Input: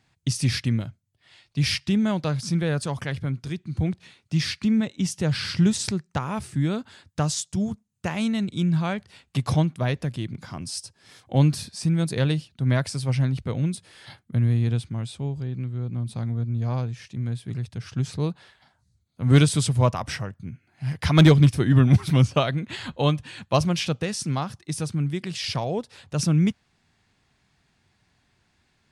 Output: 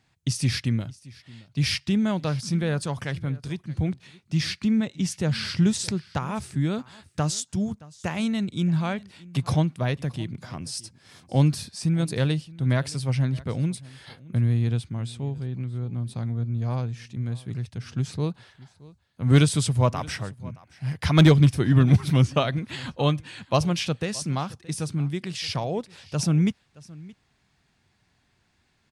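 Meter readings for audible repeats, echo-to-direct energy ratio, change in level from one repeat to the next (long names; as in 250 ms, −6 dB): 1, −21.5 dB, repeats not evenly spaced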